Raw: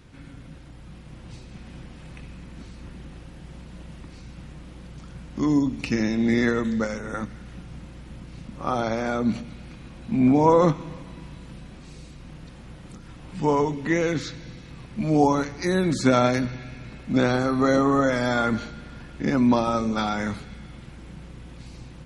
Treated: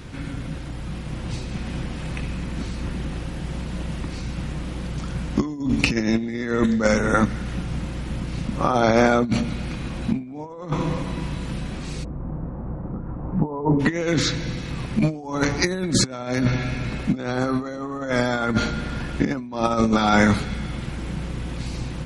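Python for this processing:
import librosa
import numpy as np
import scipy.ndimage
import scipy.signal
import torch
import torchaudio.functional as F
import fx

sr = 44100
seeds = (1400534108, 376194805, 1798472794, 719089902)

y = fx.over_compress(x, sr, threshold_db=-27.0, ratio=-0.5)
y = fx.lowpass(y, sr, hz=1100.0, slope=24, at=(12.03, 13.79), fade=0.02)
y = F.gain(torch.from_numpy(y), 7.0).numpy()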